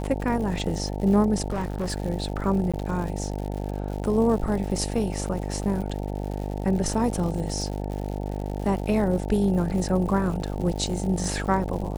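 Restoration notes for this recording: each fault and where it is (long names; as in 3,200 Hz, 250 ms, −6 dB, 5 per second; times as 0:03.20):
mains buzz 50 Hz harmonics 18 −30 dBFS
surface crackle 150 per second −33 dBFS
0:01.48–0:01.96: clipping −23.5 dBFS
0:02.72–0:02.74: drop-out 16 ms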